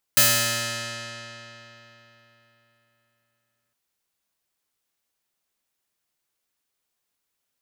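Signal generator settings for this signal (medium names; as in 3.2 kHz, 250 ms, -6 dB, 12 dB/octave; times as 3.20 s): plucked string A#2, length 3.56 s, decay 3.74 s, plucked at 0.3, bright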